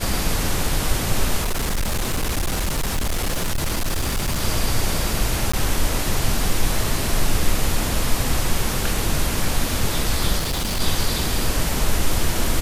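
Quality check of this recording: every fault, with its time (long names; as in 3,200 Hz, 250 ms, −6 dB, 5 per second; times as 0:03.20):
0:01.41–0:04.42: clipping −18 dBFS
0:05.52–0:05.54: drop-out 15 ms
0:10.38–0:10.81: clipping −19.5 dBFS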